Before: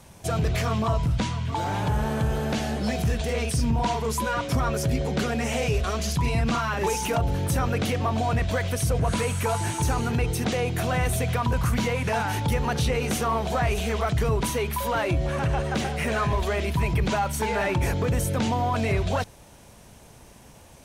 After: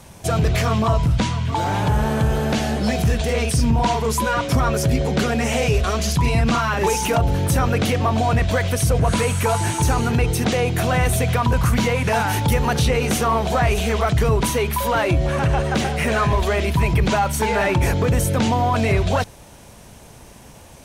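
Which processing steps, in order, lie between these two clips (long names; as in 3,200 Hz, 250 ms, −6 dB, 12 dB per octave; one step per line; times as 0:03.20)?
0:12.11–0:12.80: high-shelf EQ 11,000 Hz +8 dB
level +6 dB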